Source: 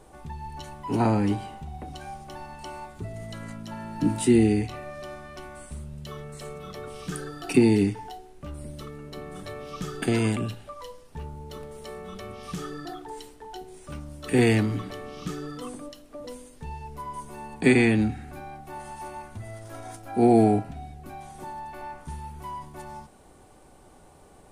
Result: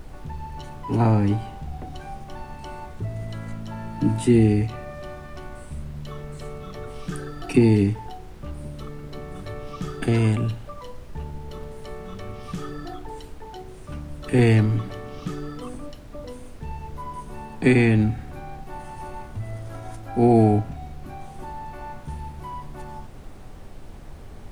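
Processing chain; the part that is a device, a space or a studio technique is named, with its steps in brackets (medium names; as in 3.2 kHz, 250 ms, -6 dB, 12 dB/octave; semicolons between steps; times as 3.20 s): car interior (peaking EQ 110 Hz +7 dB; treble shelf 4.6 kHz -7 dB; brown noise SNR 13 dB); trim +1 dB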